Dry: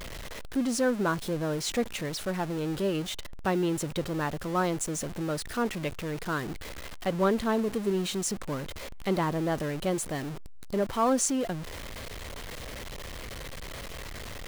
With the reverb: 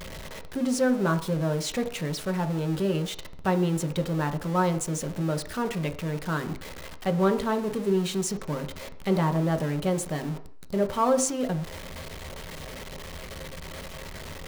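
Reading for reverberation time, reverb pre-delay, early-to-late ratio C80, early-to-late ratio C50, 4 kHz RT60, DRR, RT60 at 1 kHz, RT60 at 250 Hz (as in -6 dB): 0.55 s, 3 ms, 16.5 dB, 13.0 dB, 0.60 s, 6.0 dB, 0.55 s, 0.50 s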